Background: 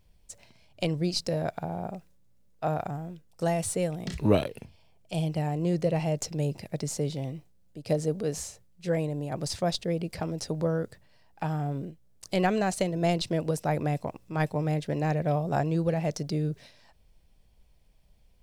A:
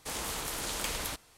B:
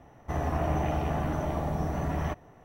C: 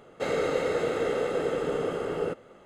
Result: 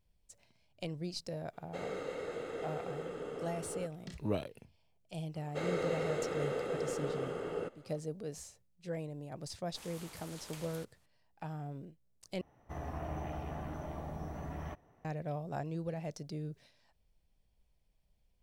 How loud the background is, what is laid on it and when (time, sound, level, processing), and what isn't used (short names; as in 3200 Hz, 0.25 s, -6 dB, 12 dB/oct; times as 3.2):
background -12 dB
1.53 add C -13.5 dB
5.35 add C -8.5 dB
9.69 add A -16 dB + HPF 60 Hz
12.41 replace with B -12 dB